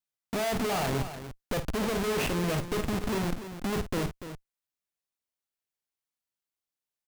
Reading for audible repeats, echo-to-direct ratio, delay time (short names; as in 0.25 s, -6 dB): 2, -8.0 dB, 52 ms